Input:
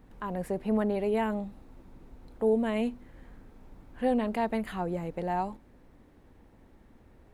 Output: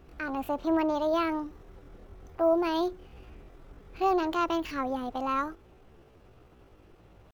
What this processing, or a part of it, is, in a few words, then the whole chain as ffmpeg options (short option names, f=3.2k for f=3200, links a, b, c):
chipmunk voice: -af "asetrate=66075,aresample=44100,atempo=0.66742,volume=1dB"